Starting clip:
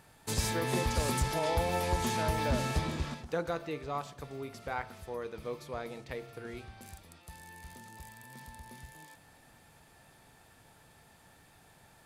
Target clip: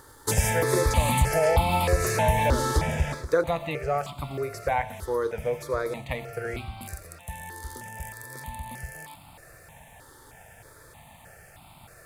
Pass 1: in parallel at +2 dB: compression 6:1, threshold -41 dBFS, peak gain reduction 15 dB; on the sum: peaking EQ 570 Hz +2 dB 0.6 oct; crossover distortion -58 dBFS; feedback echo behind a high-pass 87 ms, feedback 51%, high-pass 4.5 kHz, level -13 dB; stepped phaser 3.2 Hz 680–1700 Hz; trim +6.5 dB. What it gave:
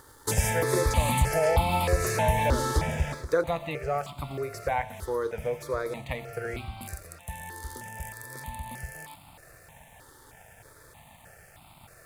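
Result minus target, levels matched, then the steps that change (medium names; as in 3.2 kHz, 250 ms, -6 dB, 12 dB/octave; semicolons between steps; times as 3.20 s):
compression: peak gain reduction +6 dB; crossover distortion: distortion +8 dB
change: compression 6:1, threshold -34 dBFS, peak gain reduction 9.5 dB; change: crossover distortion -65 dBFS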